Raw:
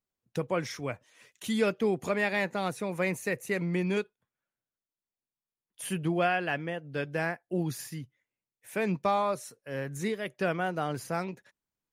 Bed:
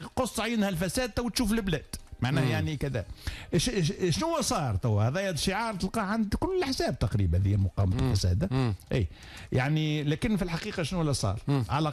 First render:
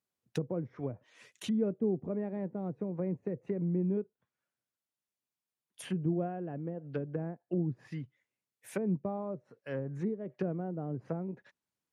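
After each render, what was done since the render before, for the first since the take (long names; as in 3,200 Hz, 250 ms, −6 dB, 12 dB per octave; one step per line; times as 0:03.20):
treble cut that deepens with the level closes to 360 Hz, closed at −29 dBFS
high-pass filter 83 Hz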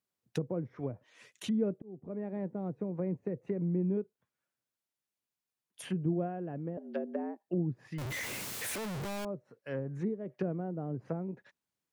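0:01.82–0:02.36: fade in
0:06.77–0:07.48: frequency shifter +100 Hz
0:07.98–0:09.25: sign of each sample alone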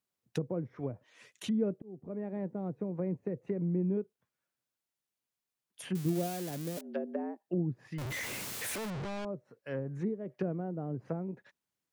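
0:05.95–0:06.81: spike at every zero crossing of −29 dBFS
0:08.90–0:09.33: high-frequency loss of the air 110 metres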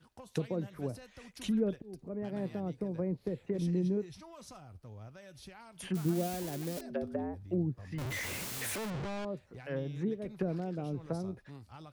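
mix in bed −23 dB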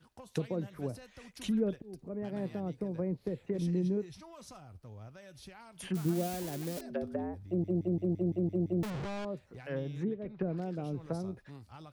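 0:07.47: stutter in place 0.17 s, 8 plays
0:10.04–0:10.58: high-frequency loss of the air 290 metres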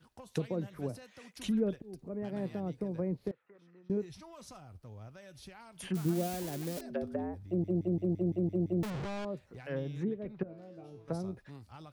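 0:00.88–0:01.35: high-pass filter 84 Hz → 200 Hz
0:03.31–0:03.90: resonant band-pass 1,300 Hz, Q 5.1
0:10.43–0:11.08: tuned comb filter 110 Hz, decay 0.51 s, mix 90%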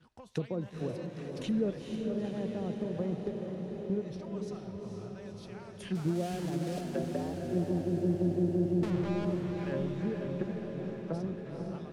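high-frequency loss of the air 56 metres
feedback delay with all-pass diffusion 478 ms, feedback 68%, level −4 dB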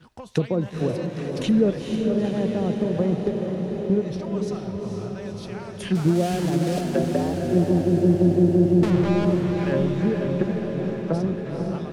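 level +11.5 dB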